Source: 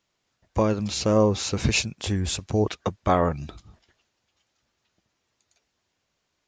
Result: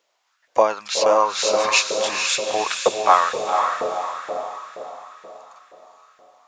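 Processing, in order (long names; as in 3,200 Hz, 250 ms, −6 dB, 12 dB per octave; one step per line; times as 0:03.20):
feedback delay with all-pass diffusion 488 ms, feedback 46%, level −4 dB
auto-filter high-pass saw up 2.1 Hz 470–1,700 Hz
level +5 dB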